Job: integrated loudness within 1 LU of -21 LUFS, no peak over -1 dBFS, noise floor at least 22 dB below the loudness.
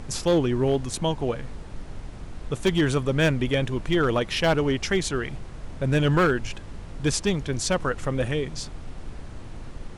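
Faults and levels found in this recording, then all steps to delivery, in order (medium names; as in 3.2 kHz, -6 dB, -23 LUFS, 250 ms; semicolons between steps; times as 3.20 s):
clipped samples 0.7%; clipping level -14.5 dBFS; noise floor -40 dBFS; noise floor target -47 dBFS; loudness -24.5 LUFS; peak level -14.5 dBFS; loudness target -21.0 LUFS
-> clip repair -14.5 dBFS; noise print and reduce 7 dB; trim +3.5 dB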